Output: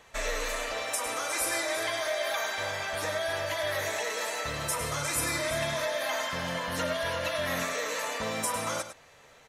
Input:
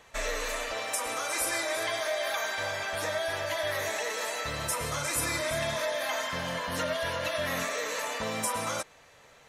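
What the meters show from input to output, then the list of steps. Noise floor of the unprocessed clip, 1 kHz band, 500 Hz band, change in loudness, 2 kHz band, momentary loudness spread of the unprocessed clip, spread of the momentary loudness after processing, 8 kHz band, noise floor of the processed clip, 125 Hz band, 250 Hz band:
-57 dBFS, 0.0 dB, +0.5 dB, +0.5 dB, 0.0 dB, 4 LU, 4 LU, +0.5 dB, -56 dBFS, +1.0 dB, +1.0 dB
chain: delay 103 ms -11 dB

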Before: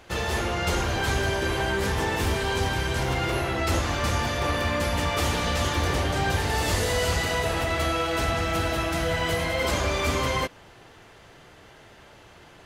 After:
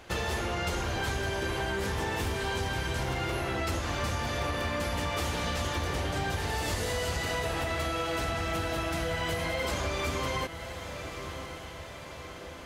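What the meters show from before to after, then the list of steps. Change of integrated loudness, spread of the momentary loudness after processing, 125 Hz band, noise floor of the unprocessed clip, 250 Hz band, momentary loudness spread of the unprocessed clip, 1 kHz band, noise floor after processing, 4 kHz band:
-6.0 dB, 8 LU, -6.0 dB, -51 dBFS, -5.5 dB, 2 LU, -5.5 dB, -43 dBFS, -5.5 dB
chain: on a send: echo that smears into a reverb 1112 ms, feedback 59%, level -16 dB; on the sum: compression, threshold -28 dBFS, peak gain reduction 8.5 dB

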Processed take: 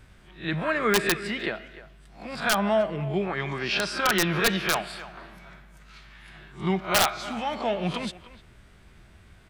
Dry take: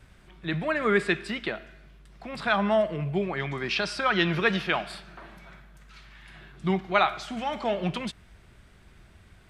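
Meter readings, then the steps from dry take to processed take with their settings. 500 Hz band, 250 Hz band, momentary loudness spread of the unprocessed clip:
0.0 dB, +0.5 dB, 15 LU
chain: reverse spectral sustain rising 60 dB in 0.30 s; speakerphone echo 300 ms, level -16 dB; integer overflow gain 12 dB

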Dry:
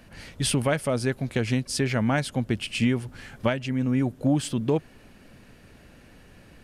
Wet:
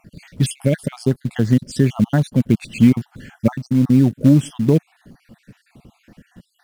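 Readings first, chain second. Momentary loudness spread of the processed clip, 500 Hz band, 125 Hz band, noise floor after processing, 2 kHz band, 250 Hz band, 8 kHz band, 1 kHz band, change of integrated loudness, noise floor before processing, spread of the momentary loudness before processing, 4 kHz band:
8 LU, +4.0 dB, +10.0 dB, -64 dBFS, -2.5 dB, +10.0 dB, no reading, -2.0 dB, +8.5 dB, -52 dBFS, 4 LU, -2.5 dB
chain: random holes in the spectrogram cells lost 49%; peaking EQ 180 Hz +13.5 dB 2.2 oct; in parallel at -5 dB: short-mantissa float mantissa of 2-bit; on the sum: trim -3.5 dB

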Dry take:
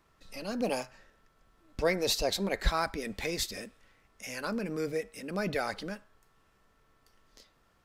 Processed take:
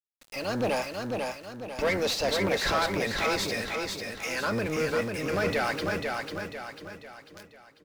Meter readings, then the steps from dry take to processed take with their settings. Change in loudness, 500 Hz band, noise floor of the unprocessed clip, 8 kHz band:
+4.0 dB, +5.5 dB, -69 dBFS, +2.0 dB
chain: octave divider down 1 oct, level +1 dB; overdrive pedal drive 22 dB, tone 2.9 kHz, clips at -14 dBFS; small samples zeroed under -39 dBFS; on a send: feedback delay 495 ms, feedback 44%, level -4 dB; on the sum: trim -3.5 dB

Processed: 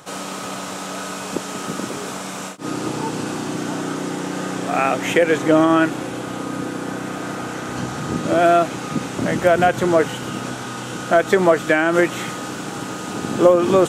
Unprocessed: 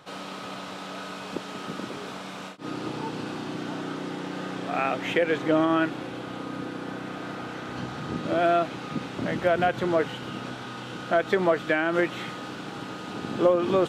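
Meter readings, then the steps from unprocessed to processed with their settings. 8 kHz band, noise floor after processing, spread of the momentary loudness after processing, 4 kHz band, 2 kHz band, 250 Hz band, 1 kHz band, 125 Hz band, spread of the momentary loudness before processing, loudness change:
+17.5 dB, -30 dBFS, 13 LU, +6.5 dB, +7.5 dB, +8.0 dB, +8.0 dB, +8.0 dB, 14 LU, +8.0 dB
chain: resonant high shelf 5.4 kHz +9 dB, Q 1.5; trim +8 dB

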